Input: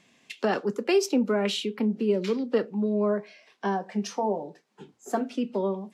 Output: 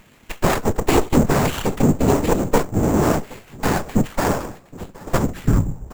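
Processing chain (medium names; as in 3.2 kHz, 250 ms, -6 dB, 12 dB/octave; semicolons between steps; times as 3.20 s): tape stop on the ending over 0.88 s; on a send: feedback delay 768 ms, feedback 19%, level -24 dB; on the sum: careless resampling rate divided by 6×, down filtered, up zero stuff; whisper effect; in parallel at -1 dB: compression, threshold -29 dBFS, peak gain reduction 19 dB; on the sum: bass shelf 220 Hz +12 dB; sliding maximum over 9 samples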